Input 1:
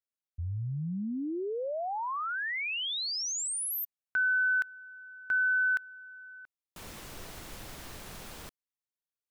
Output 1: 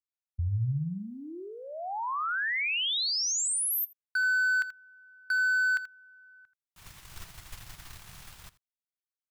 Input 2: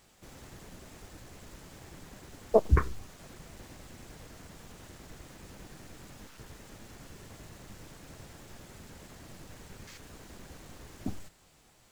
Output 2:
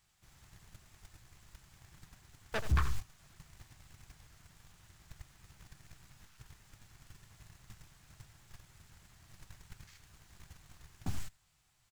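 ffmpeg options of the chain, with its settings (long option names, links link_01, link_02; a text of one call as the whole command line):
ffmpeg -i in.wav -filter_complex "[0:a]asplit=2[link_01][link_02];[link_02]acompressor=threshold=-38dB:ratio=12:attack=87:release=91:knee=1:detection=rms,volume=0dB[link_03];[link_01][link_03]amix=inputs=2:normalize=0,asoftclip=type=hard:threshold=-23.5dB,aecho=1:1:82:0.266,agate=range=-16dB:threshold=-35dB:ratio=3:release=27:detection=peak,equalizer=frequency=125:width_type=o:width=1:gain=4,equalizer=frequency=250:width_type=o:width=1:gain=-11,equalizer=frequency=500:width_type=o:width=1:gain=-12" out.wav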